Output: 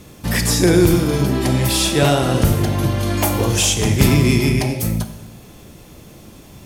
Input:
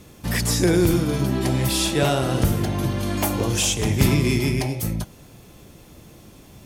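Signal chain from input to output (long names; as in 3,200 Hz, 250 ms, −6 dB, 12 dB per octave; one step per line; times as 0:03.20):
four-comb reverb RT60 0.94 s, combs from 28 ms, DRR 9.5 dB
level +4.5 dB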